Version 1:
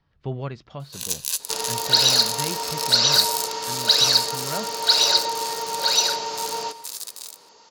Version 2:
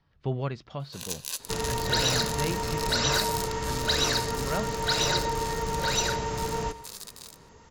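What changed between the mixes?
speech: add treble shelf 3 kHz +10.5 dB; second sound: remove cabinet simulation 380–6500 Hz, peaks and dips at 590 Hz +3 dB, 850 Hz +4 dB, 1.9 kHz -6 dB, 4.5 kHz +8 dB; master: add treble shelf 3 kHz -10 dB

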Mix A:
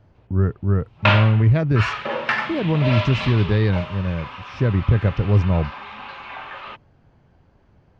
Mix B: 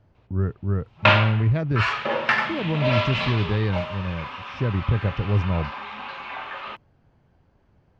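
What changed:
speech -5.0 dB; reverb: on, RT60 0.55 s

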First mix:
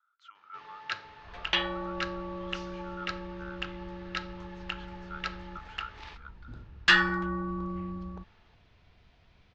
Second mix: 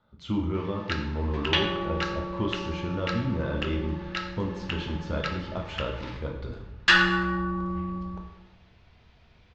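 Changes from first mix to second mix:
speech: remove ladder high-pass 1.3 kHz, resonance 85%; reverb: on, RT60 0.95 s

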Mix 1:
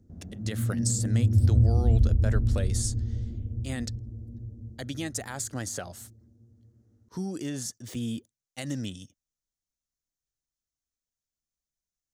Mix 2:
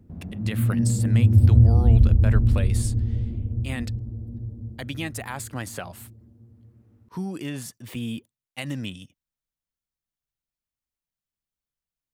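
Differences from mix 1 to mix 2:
background +5.0 dB; master: add fifteen-band graphic EQ 160 Hz +4 dB, 1 kHz +8 dB, 2.5 kHz +10 dB, 6.3 kHz -10 dB, 16 kHz +8 dB

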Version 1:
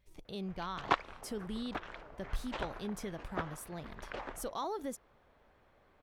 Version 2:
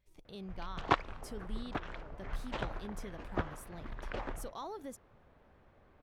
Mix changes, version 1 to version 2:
speech -5.5 dB; background: add bass shelf 240 Hz +11 dB

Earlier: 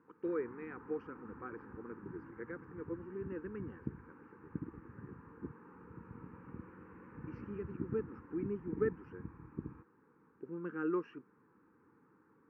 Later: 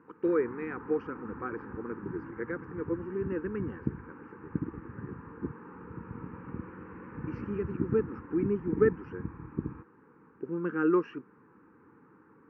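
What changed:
speech +9.5 dB; background +9.0 dB

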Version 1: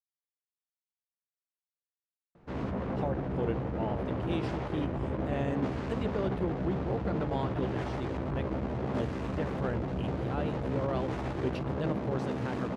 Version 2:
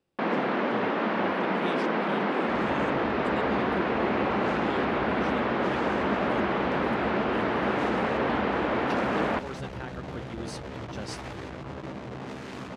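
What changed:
speech: entry -2.65 s; first sound: unmuted; master: add tilt shelf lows -6 dB, about 1.2 kHz

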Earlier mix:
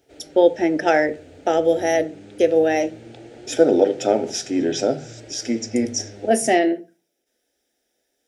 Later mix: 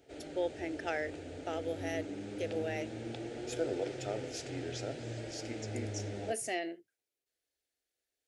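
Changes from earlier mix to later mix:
speech -11.5 dB; reverb: off

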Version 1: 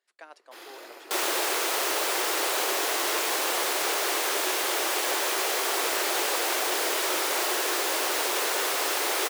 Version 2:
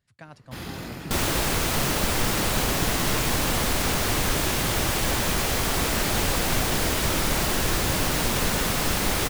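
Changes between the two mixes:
first sound +5.5 dB; master: remove elliptic high-pass 360 Hz, stop band 60 dB

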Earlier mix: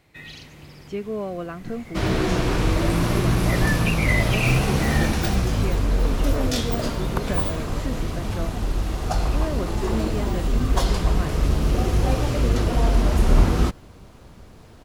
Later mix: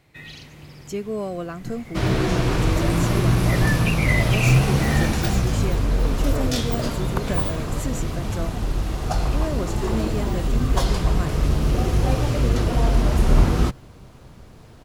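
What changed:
speech: remove Chebyshev low-pass 2.8 kHz, order 2; master: add peaking EQ 130 Hz +6 dB 0.31 oct

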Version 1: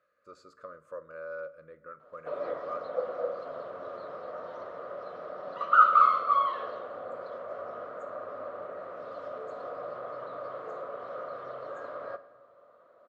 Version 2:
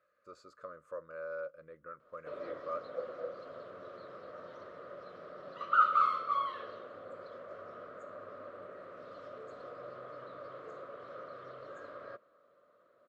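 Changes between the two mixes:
background: add peaking EQ 790 Hz -12 dB 1.1 oct; reverb: off

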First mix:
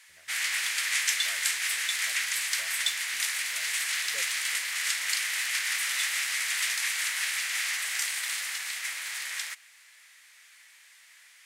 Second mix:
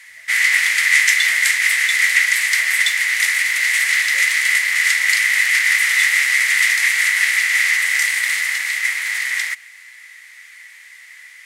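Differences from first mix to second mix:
background +7.0 dB; master: add peaking EQ 2 kHz +14 dB 0.3 oct

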